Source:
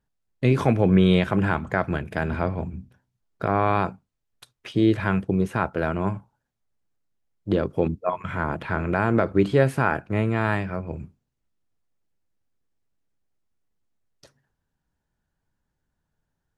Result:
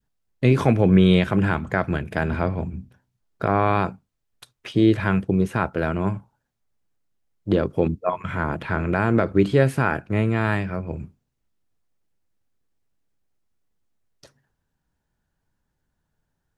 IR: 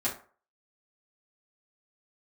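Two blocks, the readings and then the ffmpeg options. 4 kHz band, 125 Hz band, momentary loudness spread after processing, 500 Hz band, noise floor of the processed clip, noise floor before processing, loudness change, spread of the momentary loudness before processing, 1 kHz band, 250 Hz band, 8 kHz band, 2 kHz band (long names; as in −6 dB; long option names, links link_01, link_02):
+2.5 dB, +2.5 dB, 12 LU, +1.5 dB, −77 dBFS, −80 dBFS, +2.0 dB, 11 LU, +0.5 dB, +2.0 dB, can't be measured, +1.5 dB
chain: -af "adynamicequalizer=threshold=0.0178:dfrequency=860:dqfactor=0.84:tfrequency=860:tqfactor=0.84:attack=5:release=100:ratio=0.375:range=2:mode=cutabove:tftype=bell,volume=2.5dB"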